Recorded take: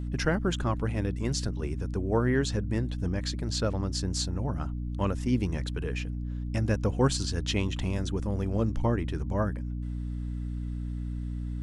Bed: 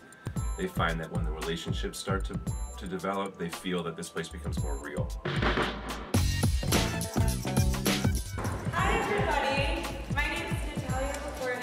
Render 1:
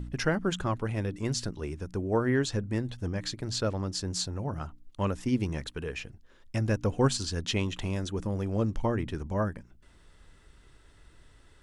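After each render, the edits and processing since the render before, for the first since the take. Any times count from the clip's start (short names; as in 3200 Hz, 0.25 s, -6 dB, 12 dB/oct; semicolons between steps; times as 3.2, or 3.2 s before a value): de-hum 60 Hz, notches 5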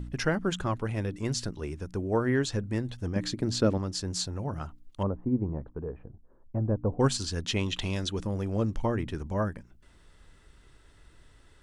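3.16–3.78 bell 260 Hz +10 dB 1.7 oct; 5.03–7 LPF 1000 Hz 24 dB/oct; 7.66–8.23 bell 3800 Hz +8.5 dB 1.3 oct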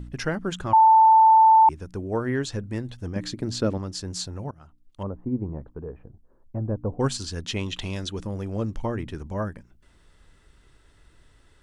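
0.73–1.69 bleep 886 Hz -11 dBFS; 4.51–5.28 fade in, from -20 dB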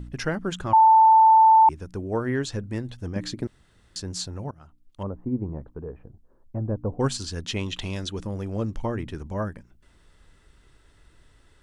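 3.47–3.96 room tone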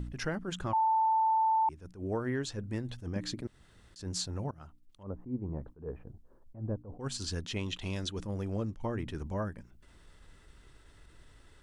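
compressor 2.5:1, threshold -33 dBFS, peak gain reduction 12.5 dB; attack slew limiter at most 180 dB/s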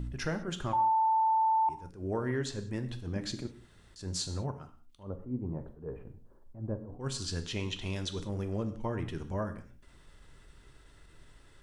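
non-linear reverb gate 0.22 s falling, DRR 7.5 dB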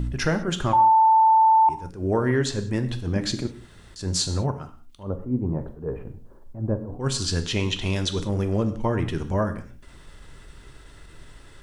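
gain +10.5 dB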